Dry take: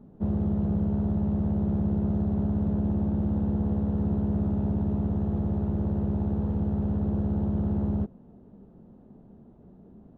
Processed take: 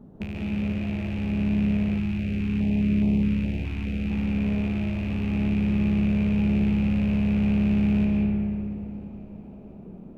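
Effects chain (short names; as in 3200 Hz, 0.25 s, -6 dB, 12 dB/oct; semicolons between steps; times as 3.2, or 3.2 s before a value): rattling part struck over -33 dBFS, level -23 dBFS; compressor 6:1, threshold -34 dBFS, peak gain reduction 11.5 dB; thinning echo 0.499 s, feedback 59%, level -22 dB; reverb RT60 2.9 s, pre-delay 0.105 s, DRR -2 dB; 1.98–4.1 stepped notch 4.8 Hz 540–1500 Hz; gain +3 dB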